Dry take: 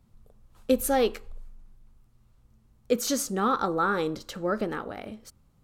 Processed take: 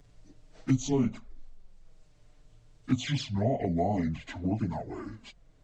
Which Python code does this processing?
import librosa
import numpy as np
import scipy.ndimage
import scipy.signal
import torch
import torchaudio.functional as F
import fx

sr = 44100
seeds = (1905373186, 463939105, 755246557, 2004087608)

y = fx.pitch_bins(x, sr, semitones=-11.5)
y = fx.env_flanger(y, sr, rest_ms=7.1, full_db=-23.0)
y = fx.band_squash(y, sr, depth_pct=40)